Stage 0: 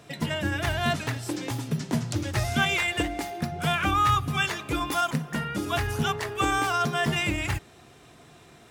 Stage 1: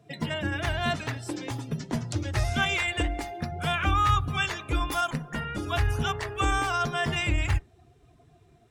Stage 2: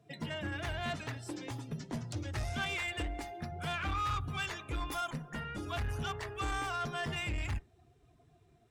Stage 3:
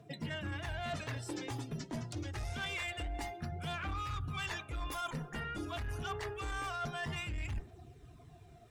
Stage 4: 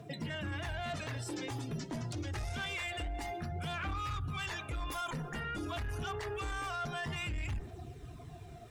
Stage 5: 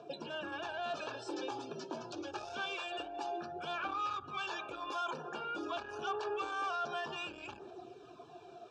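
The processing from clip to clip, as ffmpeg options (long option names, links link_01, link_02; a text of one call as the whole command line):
ffmpeg -i in.wav -af "afftdn=noise_reduction=15:noise_floor=-45,asubboost=boost=6.5:cutoff=68,volume=-1.5dB" out.wav
ffmpeg -i in.wav -af "asoftclip=type=tanh:threshold=-23dB,volume=-7dB" out.wav
ffmpeg -i in.wav -af "aphaser=in_gain=1:out_gain=1:delay=3.2:decay=0.34:speed=0.26:type=triangular,areverse,acompressor=threshold=-45dB:ratio=6,areverse,volume=7.5dB" out.wav
ffmpeg -i in.wav -af "alimiter=level_in=15.5dB:limit=-24dB:level=0:latency=1:release=53,volume=-15.5dB,volume=7.5dB" out.wav
ffmpeg -i in.wav -af "asuperstop=centerf=2000:order=12:qfactor=3.8,highpass=360,equalizer=frequency=370:width_type=q:width=4:gain=8,equalizer=frequency=550:width_type=q:width=4:gain=5,equalizer=frequency=850:width_type=q:width=4:gain=6,equalizer=frequency=1200:width_type=q:width=4:gain=4,lowpass=frequency=6000:width=0.5412,lowpass=frequency=6000:width=1.3066,volume=-1dB" out.wav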